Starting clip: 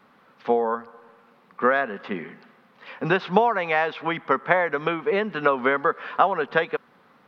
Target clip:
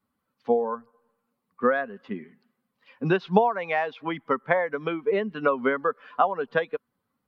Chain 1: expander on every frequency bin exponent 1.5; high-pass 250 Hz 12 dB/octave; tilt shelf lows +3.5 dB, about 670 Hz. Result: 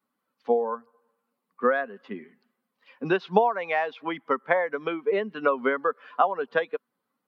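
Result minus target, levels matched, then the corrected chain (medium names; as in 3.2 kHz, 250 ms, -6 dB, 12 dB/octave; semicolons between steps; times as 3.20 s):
250 Hz band -2.5 dB
expander on every frequency bin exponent 1.5; tilt shelf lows +3.5 dB, about 670 Hz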